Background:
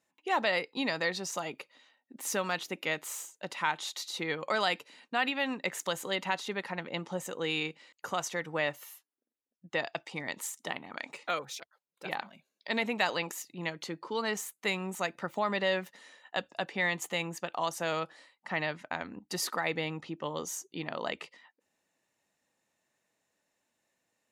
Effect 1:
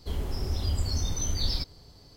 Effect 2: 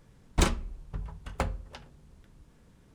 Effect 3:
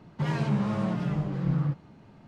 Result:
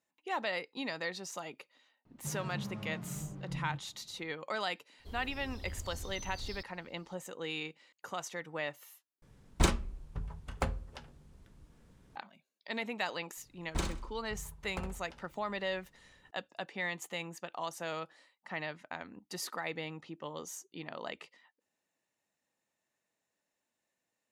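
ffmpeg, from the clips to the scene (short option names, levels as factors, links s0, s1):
-filter_complex "[2:a]asplit=2[s0][s1];[0:a]volume=0.473[s2];[3:a]lowshelf=f=100:g=10.5[s3];[s1]aecho=1:1:64|128|192|256:0.398|0.147|0.0545|0.0202[s4];[s2]asplit=2[s5][s6];[s5]atrim=end=9.224[s7];[s0]atrim=end=2.94,asetpts=PTS-STARTPTS,volume=0.75[s8];[s6]atrim=start=12.156[s9];[s3]atrim=end=2.27,asetpts=PTS-STARTPTS,volume=0.15,afade=t=in:d=0.004:c=hsin,afade=t=out:st=2.266:d=0.004:c=hsin,adelay=2050[s10];[1:a]atrim=end=2.16,asetpts=PTS-STARTPTS,volume=0.168,afade=t=in:d=0.004:c=hsin,afade=t=out:st=2.156:d=0.004:c=hsin,adelay=4990[s11];[s4]atrim=end=2.94,asetpts=PTS-STARTPTS,volume=0.299,afade=t=in:d=0.004:c=hsin,afade=t=out:st=2.936:d=0.004:c=hsin,adelay=13370[s12];[s7][s8]acrossfade=d=0.004:c1=hsin:c2=hsin[s13];[s13][s9]acrossfade=d=0.004:c1=hsin:c2=hsin[s14];[s14][s10][s11][s12]amix=inputs=4:normalize=0"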